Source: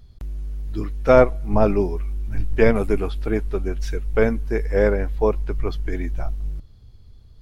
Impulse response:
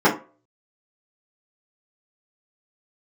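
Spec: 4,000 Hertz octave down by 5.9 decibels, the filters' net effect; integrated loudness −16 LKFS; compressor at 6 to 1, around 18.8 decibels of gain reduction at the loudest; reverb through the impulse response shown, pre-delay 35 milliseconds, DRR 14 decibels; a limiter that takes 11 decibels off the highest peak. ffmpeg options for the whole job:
-filter_complex "[0:a]equalizer=frequency=4000:width_type=o:gain=-8,acompressor=threshold=-30dB:ratio=6,alimiter=level_in=6.5dB:limit=-24dB:level=0:latency=1,volume=-6.5dB,asplit=2[link_01][link_02];[1:a]atrim=start_sample=2205,adelay=35[link_03];[link_02][link_03]afir=irnorm=-1:irlink=0,volume=-36dB[link_04];[link_01][link_04]amix=inputs=2:normalize=0,volume=24dB"

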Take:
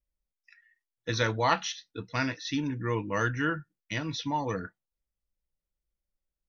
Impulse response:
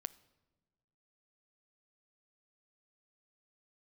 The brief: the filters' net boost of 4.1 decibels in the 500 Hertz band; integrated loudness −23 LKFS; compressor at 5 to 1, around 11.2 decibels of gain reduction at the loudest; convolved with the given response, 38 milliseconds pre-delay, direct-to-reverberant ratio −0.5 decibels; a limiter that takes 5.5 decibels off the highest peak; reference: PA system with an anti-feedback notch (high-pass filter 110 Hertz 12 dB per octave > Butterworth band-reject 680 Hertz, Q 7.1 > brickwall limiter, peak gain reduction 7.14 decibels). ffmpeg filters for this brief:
-filter_complex "[0:a]equalizer=frequency=500:width_type=o:gain=5,acompressor=threshold=-32dB:ratio=5,alimiter=level_in=1dB:limit=-24dB:level=0:latency=1,volume=-1dB,asplit=2[link_01][link_02];[1:a]atrim=start_sample=2205,adelay=38[link_03];[link_02][link_03]afir=irnorm=-1:irlink=0,volume=3.5dB[link_04];[link_01][link_04]amix=inputs=2:normalize=0,highpass=110,asuperstop=centerf=680:order=8:qfactor=7.1,volume=13.5dB,alimiter=limit=-12.5dB:level=0:latency=1"

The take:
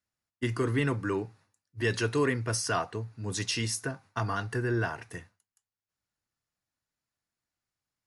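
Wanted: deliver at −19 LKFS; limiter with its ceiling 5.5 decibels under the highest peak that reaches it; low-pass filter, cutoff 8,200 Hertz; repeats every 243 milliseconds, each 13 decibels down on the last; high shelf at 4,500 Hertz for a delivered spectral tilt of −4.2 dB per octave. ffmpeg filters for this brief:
ffmpeg -i in.wav -af "lowpass=8200,highshelf=frequency=4500:gain=7,alimiter=limit=-20dB:level=0:latency=1,aecho=1:1:243|486|729:0.224|0.0493|0.0108,volume=12.5dB" out.wav

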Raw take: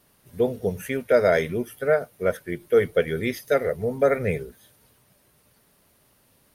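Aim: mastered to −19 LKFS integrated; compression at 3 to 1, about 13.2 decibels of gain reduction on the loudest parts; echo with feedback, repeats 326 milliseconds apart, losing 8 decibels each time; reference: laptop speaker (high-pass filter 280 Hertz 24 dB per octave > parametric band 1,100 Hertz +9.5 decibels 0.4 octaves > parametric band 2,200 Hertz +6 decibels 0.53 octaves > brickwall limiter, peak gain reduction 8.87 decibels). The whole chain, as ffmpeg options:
ffmpeg -i in.wav -af "acompressor=threshold=-32dB:ratio=3,highpass=frequency=280:width=0.5412,highpass=frequency=280:width=1.3066,equalizer=frequency=1100:width_type=o:width=0.4:gain=9.5,equalizer=frequency=2200:width_type=o:width=0.53:gain=6,aecho=1:1:326|652|978|1304|1630:0.398|0.159|0.0637|0.0255|0.0102,volume=18.5dB,alimiter=limit=-8.5dB:level=0:latency=1" out.wav

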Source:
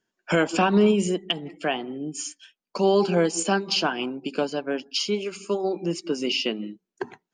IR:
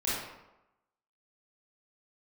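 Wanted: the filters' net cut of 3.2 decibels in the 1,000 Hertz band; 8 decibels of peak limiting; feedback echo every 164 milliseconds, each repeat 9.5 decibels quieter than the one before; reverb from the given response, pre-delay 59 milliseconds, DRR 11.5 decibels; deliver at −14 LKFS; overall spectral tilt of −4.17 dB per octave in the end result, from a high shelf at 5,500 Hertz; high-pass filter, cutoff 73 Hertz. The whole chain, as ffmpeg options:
-filter_complex "[0:a]highpass=73,equalizer=frequency=1000:width_type=o:gain=-4.5,highshelf=frequency=5500:gain=-4,alimiter=limit=-18.5dB:level=0:latency=1,aecho=1:1:164|328|492|656:0.335|0.111|0.0365|0.012,asplit=2[link_01][link_02];[1:a]atrim=start_sample=2205,adelay=59[link_03];[link_02][link_03]afir=irnorm=-1:irlink=0,volume=-19.5dB[link_04];[link_01][link_04]amix=inputs=2:normalize=0,volume=14.5dB"

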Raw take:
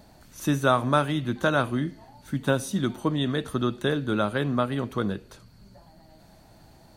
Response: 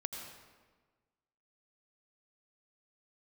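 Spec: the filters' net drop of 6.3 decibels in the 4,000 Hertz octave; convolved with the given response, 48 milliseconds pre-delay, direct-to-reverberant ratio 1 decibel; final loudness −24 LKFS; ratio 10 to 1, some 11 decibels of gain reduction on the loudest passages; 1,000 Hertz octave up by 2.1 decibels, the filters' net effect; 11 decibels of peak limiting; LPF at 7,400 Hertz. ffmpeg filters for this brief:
-filter_complex "[0:a]lowpass=7400,equalizer=frequency=1000:width_type=o:gain=3.5,equalizer=frequency=4000:width_type=o:gain=-7.5,acompressor=threshold=-26dB:ratio=10,alimiter=level_in=1dB:limit=-24dB:level=0:latency=1,volume=-1dB,asplit=2[link_01][link_02];[1:a]atrim=start_sample=2205,adelay=48[link_03];[link_02][link_03]afir=irnorm=-1:irlink=0,volume=-1dB[link_04];[link_01][link_04]amix=inputs=2:normalize=0,volume=9.5dB"

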